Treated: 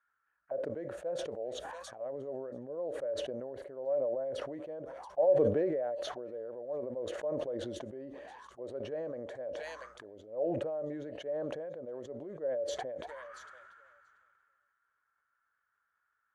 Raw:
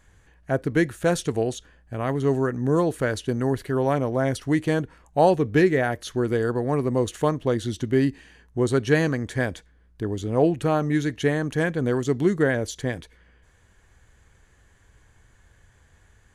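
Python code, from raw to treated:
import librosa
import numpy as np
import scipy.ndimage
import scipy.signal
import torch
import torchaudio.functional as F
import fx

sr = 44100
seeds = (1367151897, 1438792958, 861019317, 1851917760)

p1 = fx.auto_wah(x, sr, base_hz=570.0, top_hz=1400.0, q=16.0, full_db=-25.0, direction='down')
p2 = p1 + fx.echo_wet_highpass(p1, sr, ms=683, feedback_pct=31, hz=4300.0, wet_db=-7, dry=0)
p3 = fx.sustainer(p2, sr, db_per_s=22.0)
y = p3 * 10.0 ** (-2.5 / 20.0)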